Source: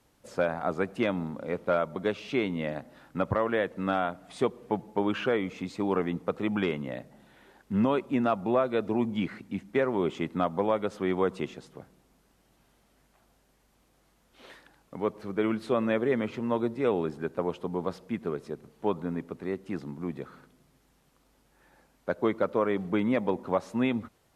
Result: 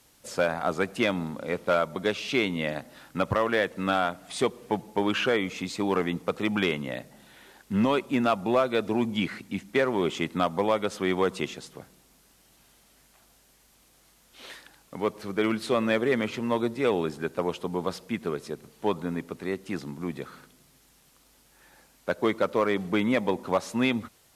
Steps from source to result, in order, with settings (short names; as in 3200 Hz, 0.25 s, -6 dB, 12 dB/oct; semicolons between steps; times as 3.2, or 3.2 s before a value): in parallel at -5.5 dB: overloaded stage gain 19.5 dB; on the sum: high shelf 2200 Hz +12 dB; gain -2.5 dB